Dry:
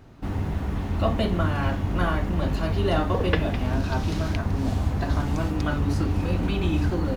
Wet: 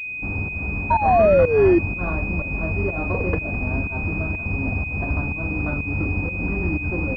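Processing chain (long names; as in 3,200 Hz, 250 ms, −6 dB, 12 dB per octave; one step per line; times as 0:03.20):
sound drawn into the spectrogram fall, 0:00.90–0:01.79, 330–960 Hz −14 dBFS
fake sidechain pumping 124 BPM, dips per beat 1, −16 dB, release 210 ms
switching amplifier with a slow clock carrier 2,500 Hz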